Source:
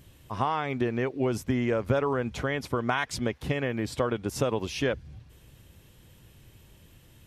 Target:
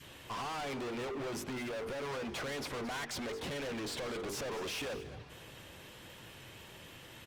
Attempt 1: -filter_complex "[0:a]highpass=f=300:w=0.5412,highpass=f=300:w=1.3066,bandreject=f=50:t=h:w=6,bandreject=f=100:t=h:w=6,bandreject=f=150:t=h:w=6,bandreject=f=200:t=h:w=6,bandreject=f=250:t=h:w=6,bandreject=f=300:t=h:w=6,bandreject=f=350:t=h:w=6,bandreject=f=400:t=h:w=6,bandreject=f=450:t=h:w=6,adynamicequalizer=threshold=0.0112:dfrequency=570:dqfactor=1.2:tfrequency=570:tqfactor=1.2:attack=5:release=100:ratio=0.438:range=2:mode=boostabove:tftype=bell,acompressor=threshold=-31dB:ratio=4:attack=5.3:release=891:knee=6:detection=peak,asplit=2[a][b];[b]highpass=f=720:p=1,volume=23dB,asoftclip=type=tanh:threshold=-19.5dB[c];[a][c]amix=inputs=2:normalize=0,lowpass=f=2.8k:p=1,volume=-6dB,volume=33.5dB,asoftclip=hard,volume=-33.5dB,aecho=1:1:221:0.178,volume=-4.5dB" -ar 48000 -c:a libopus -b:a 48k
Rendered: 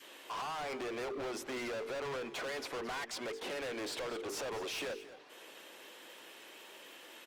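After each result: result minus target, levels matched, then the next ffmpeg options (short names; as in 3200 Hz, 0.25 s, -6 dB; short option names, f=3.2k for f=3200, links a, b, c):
compressor: peak gain reduction +7.5 dB; 250 Hz band -3.0 dB
-filter_complex "[0:a]highpass=f=300:w=0.5412,highpass=f=300:w=1.3066,bandreject=f=50:t=h:w=6,bandreject=f=100:t=h:w=6,bandreject=f=150:t=h:w=6,bandreject=f=200:t=h:w=6,bandreject=f=250:t=h:w=6,bandreject=f=300:t=h:w=6,bandreject=f=350:t=h:w=6,bandreject=f=400:t=h:w=6,bandreject=f=450:t=h:w=6,adynamicequalizer=threshold=0.0112:dfrequency=570:dqfactor=1.2:tfrequency=570:tqfactor=1.2:attack=5:release=100:ratio=0.438:range=2:mode=boostabove:tftype=bell,acompressor=threshold=-20.5dB:ratio=4:attack=5.3:release=891:knee=6:detection=peak,asplit=2[a][b];[b]highpass=f=720:p=1,volume=23dB,asoftclip=type=tanh:threshold=-19.5dB[c];[a][c]amix=inputs=2:normalize=0,lowpass=f=2.8k:p=1,volume=-6dB,volume=33.5dB,asoftclip=hard,volume=-33.5dB,aecho=1:1:221:0.178,volume=-4.5dB" -ar 48000 -c:a libopus -b:a 48k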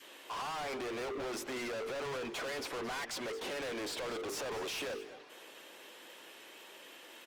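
250 Hz band -3.0 dB
-filter_complex "[0:a]bandreject=f=50:t=h:w=6,bandreject=f=100:t=h:w=6,bandreject=f=150:t=h:w=6,bandreject=f=200:t=h:w=6,bandreject=f=250:t=h:w=6,bandreject=f=300:t=h:w=6,bandreject=f=350:t=h:w=6,bandreject=f=400:t=h:w=6,bandreject=f=450:t=h:w=6,adynamicequalizer=threshold=0.0112:dfrequency=570:dqfactor=1.2:tfrequency=570:tqfactor=1.2:attack=5:release=100:ratio=0.438:range=2:mode=boostabove:tftype=bell,acompressor=threshold=-20.5dB:ratio=4:attack=5.3:release=891:knee=6:detection=peak,asplit=2[a][b];[b]highpass=f=720:p=1,volume=23dB,asoftclip=type=tanh:threshold=-19.5dB[c];[a][c]amix=inputs=2:normalize=0,lowpass=f=2.8k:p=1,volume=-6dB,volume=33.5dB,asoftclip=hard,volume=-33.5dB,aecho=1:1:221:0.178,volume=-4.5dB" -ar 48000 -c:a libopus -b:a 48k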